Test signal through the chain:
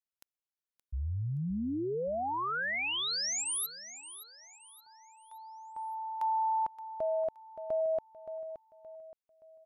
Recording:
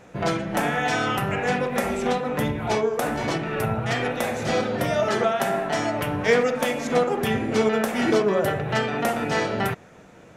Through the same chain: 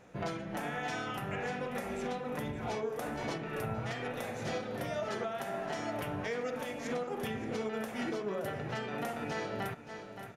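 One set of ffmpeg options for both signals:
-af "bandreject=f=7900:w=17,aecho=1:1:572|1144|1716|2288:0.2|0.0778|0.0303|0.0118,alimiter=limit=0.133:level=0:latency=1:release=366,volume=0.355"

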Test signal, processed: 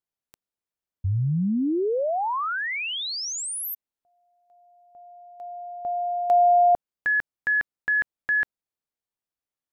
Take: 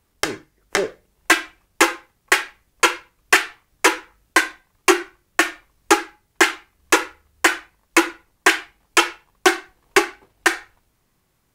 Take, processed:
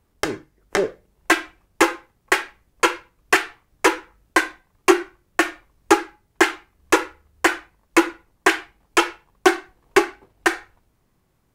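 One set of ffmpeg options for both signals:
-af "tiltshelf=f=1300:g=4,volume=0.841"

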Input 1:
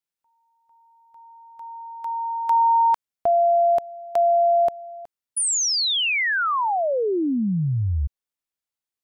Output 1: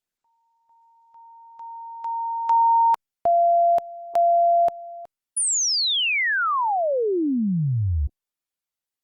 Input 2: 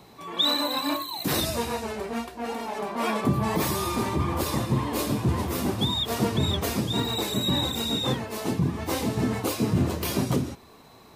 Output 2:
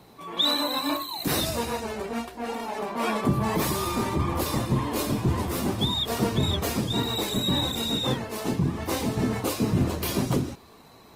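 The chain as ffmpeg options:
-ar 48000 -c:a libopus -b:a 24k

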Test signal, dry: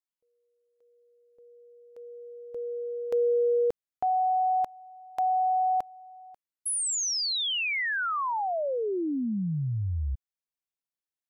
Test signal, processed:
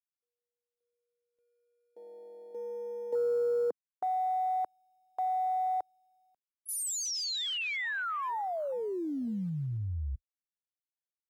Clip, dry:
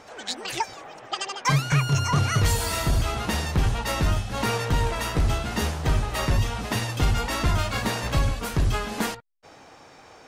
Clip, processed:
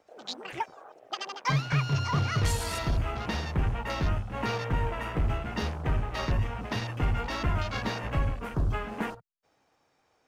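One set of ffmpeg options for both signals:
-filter_complex "[0:a]acrossover=split=130|1400|1900[s0][s1][s2][s3];[s1]acrusher=bits=4:mode=log:mix=0:aa=0.000001[s4];[s0][s4][s2][s3]amix=inputs=4:normalize=0,afwtdn=0.0178,volume=0.562"

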